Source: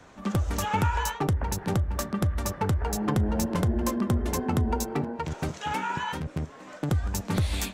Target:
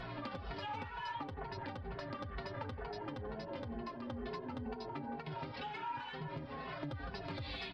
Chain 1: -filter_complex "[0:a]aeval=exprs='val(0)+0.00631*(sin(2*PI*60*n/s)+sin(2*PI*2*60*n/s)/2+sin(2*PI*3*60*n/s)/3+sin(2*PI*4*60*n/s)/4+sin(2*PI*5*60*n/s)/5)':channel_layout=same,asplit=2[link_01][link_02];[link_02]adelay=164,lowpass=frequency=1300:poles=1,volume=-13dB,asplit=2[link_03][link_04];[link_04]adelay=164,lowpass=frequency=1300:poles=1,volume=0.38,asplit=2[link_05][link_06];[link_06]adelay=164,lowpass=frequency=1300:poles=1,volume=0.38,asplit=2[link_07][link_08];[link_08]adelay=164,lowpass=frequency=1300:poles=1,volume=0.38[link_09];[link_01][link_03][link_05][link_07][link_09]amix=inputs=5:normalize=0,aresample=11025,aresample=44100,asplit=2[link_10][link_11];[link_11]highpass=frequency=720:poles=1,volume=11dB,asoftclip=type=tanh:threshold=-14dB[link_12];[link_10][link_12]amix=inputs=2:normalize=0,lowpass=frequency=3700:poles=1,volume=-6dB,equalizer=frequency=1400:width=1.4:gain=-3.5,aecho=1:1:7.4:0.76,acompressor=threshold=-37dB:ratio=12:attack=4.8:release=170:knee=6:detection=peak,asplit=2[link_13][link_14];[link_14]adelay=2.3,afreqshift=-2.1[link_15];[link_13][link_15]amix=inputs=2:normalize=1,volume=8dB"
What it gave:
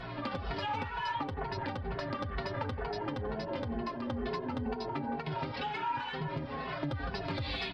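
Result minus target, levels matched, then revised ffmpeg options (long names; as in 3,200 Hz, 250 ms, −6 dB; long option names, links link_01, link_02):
downward compressor: peak gain reduction −7.5 dB
-filter_complex "[0:a]aeval=exprs='val(0)+0.00631*(sin(2*PI*60*n/s)+sin(2*PI*2*60*n/s)/2+sin(2*PI*3*60*n/s)/3+sin(2*PI*4*60*n/s)/4+sin(2*PI*5*60*n/s)/5)':channel_layout=same,asplit=2[link_01][link_02];[link_02]adelay=164,lowpass=frequency=1300:poles=1,volume=-13dB,asplit=2[link_03][link_04];[link_04]adelay=164,lowpass=frequency=1300:poles=1,volume=0.38,asplit=2[link_05][link_06];[link_06]adelay=164,lowpass=frequency=1300:poles=1,volume=0.38,asplit=2[link_07][link_08];[link_08]adelay=164,lowpass=frequency=1300:poles=1,volume=0.38[link_09];[link_01][link_03][link_05][link_07][link_09]amix=inputs=5:normalize=0,aresample=11025,aresample=44100,asplit=2[link_10][link_11];[link_11]highpass=frequency=720:poles=1,volume=11dB,asoftclip=type=tanh:threshold=-14dB[link_12];[link_10][link_12]amix=inputs=2:normalize=0,lowpass=frequency=3700:poles=1,volume=-6dB,equalizer=frequency=1400:width=1.4:gain=-3.5,aecho=1:1:7.4:0.76,acompressor=threshold=-45dB:ratio=12:attack=4.8:release=170:knee=6:detection=peak,asplit=2[link_13][link_14];[link_14]adelay=2.3,afreqshift=-2.1[link_15];[link_13][link_15]amix=inputs=2:normalize=1,volume=8dB"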